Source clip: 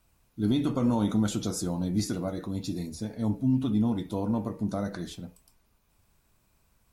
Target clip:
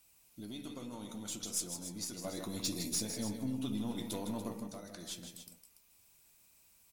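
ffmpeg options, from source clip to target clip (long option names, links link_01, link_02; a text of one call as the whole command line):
ffmpeg -i in.wav -filter_complex "[0:a]lowshelf=frequency=140:gain=-11,acompressor=threshold=-42dB:ratio=3,volume=32dB,asoftclip=hard,volume=-32dB,aexciter=amount=3.2:drive=3.8:freq=2100,asettb=1/sr,asplit=3[link_01][link_02][link_03];[link_01]atrim=end=2.244[link_04];[link_02]atrim=start=2.24:end=4.6,asetpts=PTS-STARTPTS,afade=type=in:duration=0.004:curve=qsin,afade=type=out:start_time=2.356:duration=0.004:curve=qsin,aeval=exprs='0.0596*sin(PI/2*1.58*val(0)/0.0596)':channel_layout=same[link_05];[link_03]atrim=start=4.596[link_06];[link_04][link_05]acrossfade=duration=0.004:curve1=hsin:curve2=qsin[link_07];[link_07][link_06]acrossfade=duration=0.004:curve1=qsin:curve2=hsin,aeval=exprs='0.119*(cos(1*acos(clip(val(0)/0.119,-1,1)))-cos(1*PI/2))+0.0168*(cos(3*acos(clip(val(0)/0.119,-1,1)))-cos(3*PI/2))+0.00237*(cos(8*acos(clip(val(0)/0.119,-1,1)))-cos(8*PI/2))':channel_layout=same,aecho=1:1:157|287:0.398|0.282,volume=-1dB" out.wav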